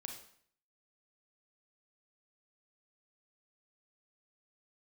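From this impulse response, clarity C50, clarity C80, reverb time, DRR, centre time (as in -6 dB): 5.5 dB, 9.5 dB, 0.60 s, 2.5 dB, 27 ms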